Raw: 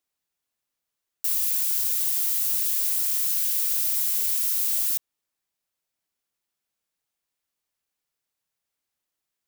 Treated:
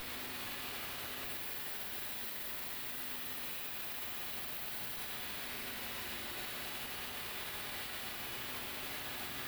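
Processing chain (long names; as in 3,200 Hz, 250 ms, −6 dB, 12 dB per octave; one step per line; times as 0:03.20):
spike at every zero crossing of −26.5 dBFS
high-shelf EQ 8,800 Hz +6.5 dB
in parallel at −10.5 dB: fuzz pedal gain 30 dB, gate −39 dBFS
on the sum: high-frequency loss of the air 450 metres
convolution reverb RT60 2.4 s, pre-delay 4 ms, DRR −2 dB
brickwall limiter −33.5 dBFS, peak gain reduction 8 dB
level +1 dB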